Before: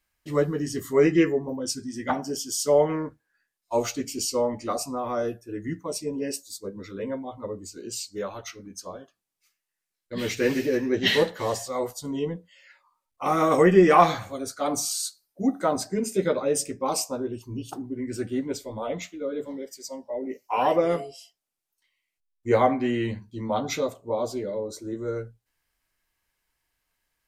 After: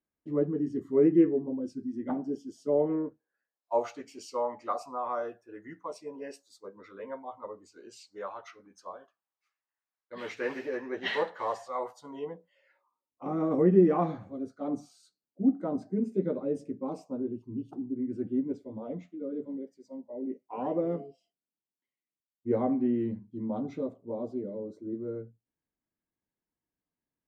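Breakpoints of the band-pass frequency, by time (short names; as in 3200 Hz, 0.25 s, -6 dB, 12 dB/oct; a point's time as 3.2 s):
band-pass, Q 1.5
2.78 s 280 Hz
4.06 s 1000 Hz
12.12 s 1000 Hz
13.27 s 240 Hz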